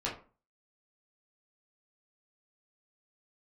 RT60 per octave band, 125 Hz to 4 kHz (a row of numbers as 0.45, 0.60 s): 0.40, 0.45, 0.35, 0.35, 0.30, 0.20 s